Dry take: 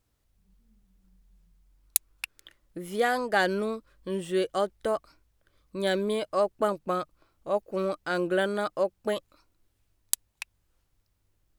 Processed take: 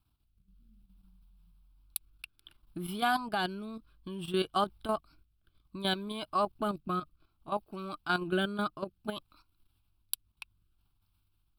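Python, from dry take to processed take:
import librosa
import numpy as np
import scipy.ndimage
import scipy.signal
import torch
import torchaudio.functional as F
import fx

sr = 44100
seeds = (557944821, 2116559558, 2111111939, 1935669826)

y = fx.fixed_phaser(x, sr, hz=1900.0, stages=6)
y = fx.level_steps(y, sr, step_db=11)
y = fx.rotary(y, sr, hz=0.6)
y = y * librosa.db_to_amplitude(7.0)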